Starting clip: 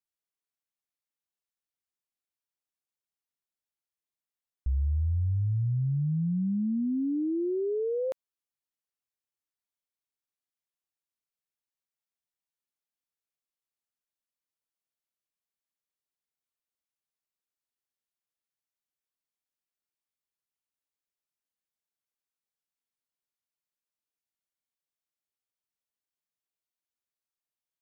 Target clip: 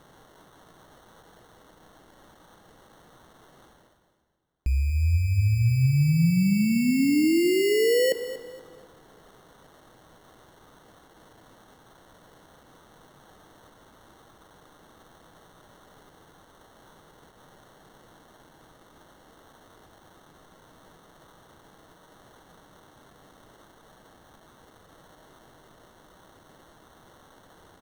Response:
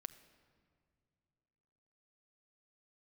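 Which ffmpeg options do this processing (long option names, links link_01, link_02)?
-filter_complex "[0:a]equalizer=frequency=260:width=0.5:gain=5.5,areverse,acompressor=mode=upward:threshold=-41dB:ratio=2.5,areverse,alimiter=level_in=3.5dB:limit=-24dB:level=0:latency=1:release=27,volume=-3.5dB,acrusher=samples=18:mix=1:aa=0.000001,aecho=1:1:236|472|708:0.2|0.0559|0.0156,asplit=2[link_01][link_02];[1:a]atrim=start_sample=2205,asetrate=43659,aresample=44100[link_03];[link_02][link_03]afir=irnorm=-1:irlink=0,volume=10.5dB[link_04];[link_01][link_04]amix=inputs=2:normalize=0"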